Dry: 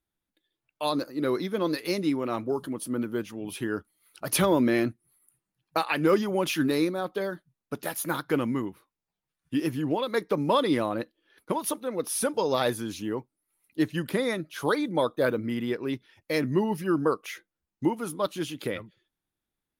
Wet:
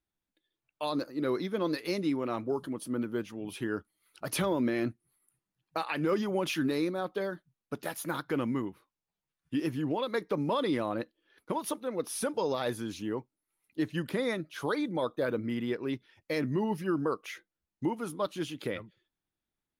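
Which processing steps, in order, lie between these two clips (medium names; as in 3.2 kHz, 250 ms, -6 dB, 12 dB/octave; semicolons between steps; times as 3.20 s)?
treble shelf 9.1 kHz -8 dB; peak limiter -17.5 dBFS, peak gain reduction 5.5 dB; trim -3 dB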